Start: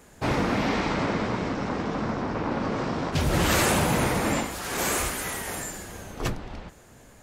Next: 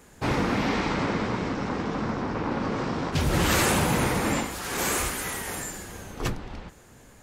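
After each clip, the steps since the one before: bell 640 Hz -4 dB 0.31 oct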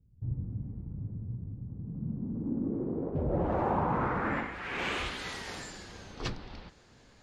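low-pass sweep 110 Hz -> 4600 Hz, 1.67–5.35; gain -7.5 dB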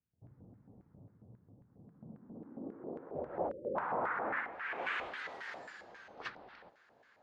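spectral delete 3.49–3.76, 600–7600 Hz; LFO band-pass square 3.7 Hz 670–1600 Hz; gain +2.5 dB

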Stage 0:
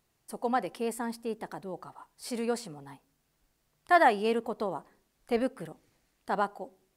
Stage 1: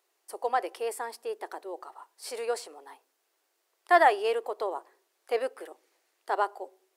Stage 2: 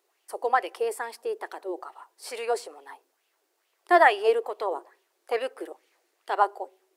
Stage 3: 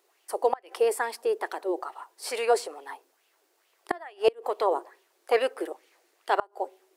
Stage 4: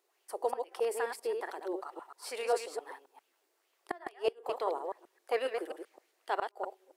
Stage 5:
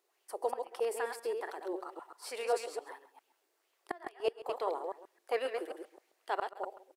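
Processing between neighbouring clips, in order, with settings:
elliptic high-pass 360 Hz, stop band 60 dB; gain +2 dB
LFO bell 2.3 Hz 310–3100 Hz +10 dB
flipped gate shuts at -14 dBFS, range -30 dB; gain +4.5 dB
reverse delay 0.133 s, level -5 dB; gain -8.5 dB
echo 0.135 s -16 dB; gain -1.5 dB

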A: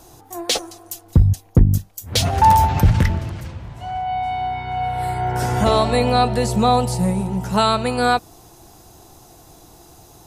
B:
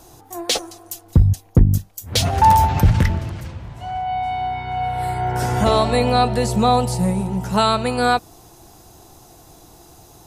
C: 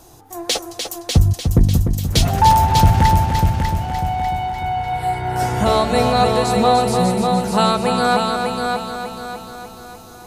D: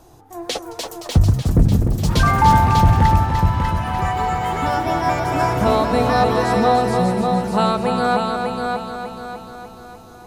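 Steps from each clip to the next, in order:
nothing audible
multi-head echo 0.298 s, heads first and second, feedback 50%, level -6.5 dB
high shelf 3100 Hz -9 dB; echoes that change speed 0.42 s, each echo +5 st, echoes 3, each echo -6 dB; gain -1 dB

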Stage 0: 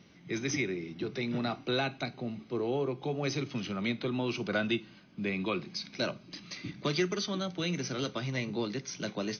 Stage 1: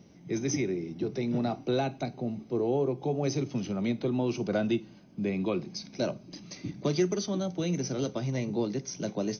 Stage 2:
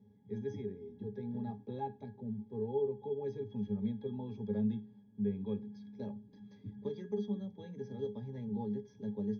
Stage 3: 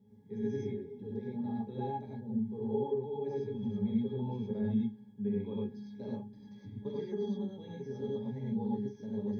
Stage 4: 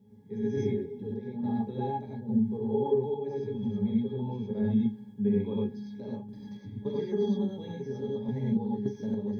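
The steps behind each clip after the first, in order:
band shelf 2200 Hz -10.5 dB 2.3 oct; gain +4 dB
octave resonator G#, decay 0.16 s; gain +1.5 dB
non-linear reverb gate 0.13 s rising, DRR -4 dB; gain -2 dB
random-step tremolo; gain +8.5 dB

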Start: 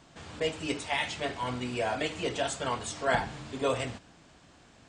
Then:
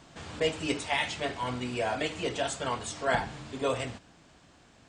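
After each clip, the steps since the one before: vocal rider within 5 dB 2 s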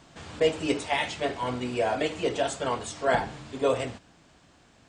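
dynamic EQ 450 Hz, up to +6 dB, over -40 dBFS, Q 0.73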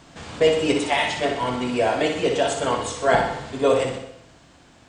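flutter echo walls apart 10.5 m, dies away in 0.61 s; reverb RT60 0.80 s, pre-delay 0.111 s, DRR 16.5 dB; gain +5 dB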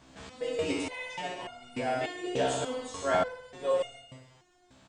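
loudspeakers at several distances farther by 29 m -11 dB, 47 m -8 dB; stepped resonator 3.4 Hz 65–710 Hz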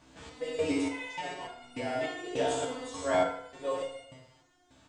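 FDN reverb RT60 0.65 s, low-frequency decay 0.85×, high-frequency decay 0.8×, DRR 2.5 dB; gain -3 dB

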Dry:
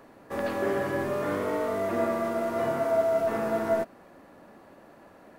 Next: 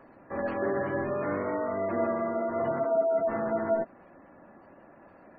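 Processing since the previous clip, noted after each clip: spectral gate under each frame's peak -25 dB strong; notch 440 Hz, Q 12; gain -1 dB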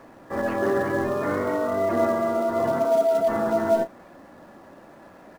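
in parallel at -10 dB: companded quantiser 4-bit; on the sum: doubler 33 ms -11 dB; gain +3 dB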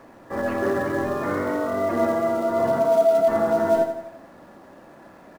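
feedback echo 85 ms, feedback 51%, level -9 dB

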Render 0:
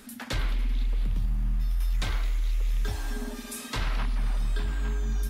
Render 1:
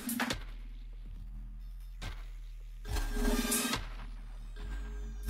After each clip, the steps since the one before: negative-ratio compressor -33 dBFS, ratio -0.5; gain -2.5 dB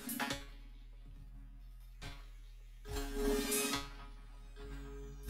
resonator 140 Hz, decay 0.32 s, harmonics all, mix 90%; gain +6.5 dB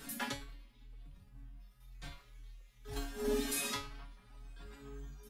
endless flanger 4 ms +2 Hz; gain +2.5 dB

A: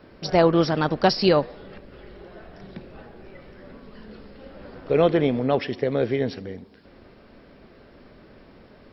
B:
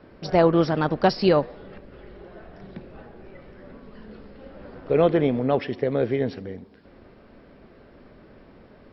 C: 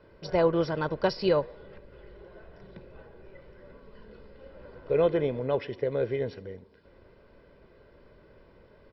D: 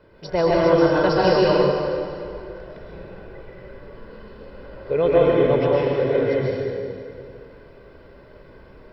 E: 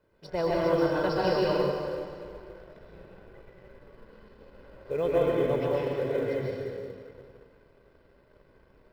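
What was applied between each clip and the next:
high shelf 3900 Hz -10.5 dB
comb 2 ms, depth 51%; gain -7 dB
plate-style reverb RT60 2.4 s, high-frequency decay 0.8×, pre-delay 0.11 s, DRR -6.5 dB; gain +3 dB
G.711 law mismatch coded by A; gain -8.5 dB

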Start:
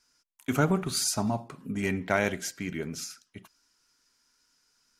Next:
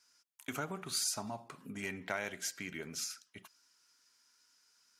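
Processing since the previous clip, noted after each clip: compressor 2.5:1, threshold -34 dBFS, peak gain reduction 10.5 dB; HPF 49 Hz; low shelf 470 Hz -11 dB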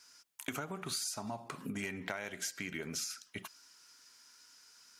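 compressor 6:1, threshold -46 dBFS, peak gain reduction 14.5 dB; gain +9.5 dB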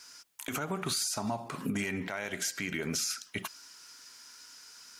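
limiter -31 dBFS, peak gain reduction 10.5 dB; gain +8.5 dB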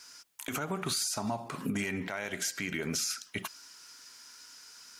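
nothing audible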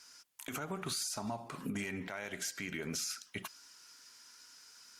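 gain -5.5 dB; Opus 64 kbps 48000 Hz

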